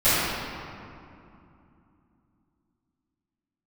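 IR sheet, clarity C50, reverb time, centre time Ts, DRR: −5.0 dB, 2.7 s, 164 ms, −19.0 dB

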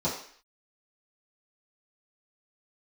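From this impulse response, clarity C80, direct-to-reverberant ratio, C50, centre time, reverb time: 9.5 dB, −11.0 dB, 5.5 dB, 33 ms, 0.55 s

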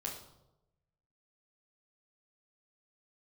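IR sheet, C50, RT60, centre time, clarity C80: 6.0 dB, 0.90 s, 32 ms, 9.0 dB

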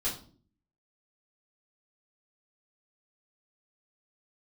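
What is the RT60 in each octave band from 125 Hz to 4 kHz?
0.75, 0.70, 0.55, 0.40, 0.30, 0.35 seconds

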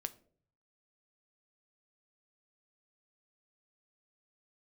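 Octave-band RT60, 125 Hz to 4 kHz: 1.0, 0.65, 0.60, 0.45, 0.35, 0.30 seconds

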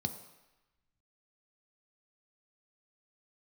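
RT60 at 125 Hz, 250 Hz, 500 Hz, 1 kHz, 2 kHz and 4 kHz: 0.85, 0.85, 0.95, 1.1, 1.2, 1.0 seconds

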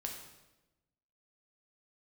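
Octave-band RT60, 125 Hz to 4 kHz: 1.4, 1.3, 1.1, 0.95, 0.90, 0.85 seconds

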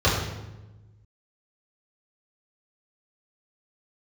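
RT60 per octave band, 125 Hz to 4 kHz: 1.9, 1.5, 1.2, 0.95, 0.85, 0.75 seconds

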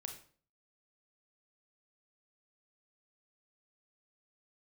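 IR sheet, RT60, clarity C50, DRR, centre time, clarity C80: 0.45 s, 8.5 dB, 3.5 dB, 18 ms, 12.5 dB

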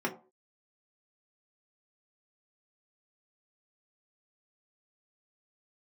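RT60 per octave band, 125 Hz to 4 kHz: 0.30, 0.40, 0.40, 0.35, 0.20, 0.15 seconds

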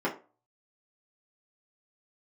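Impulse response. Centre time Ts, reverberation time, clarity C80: 16 ms, 0.35 s, 16.5 dB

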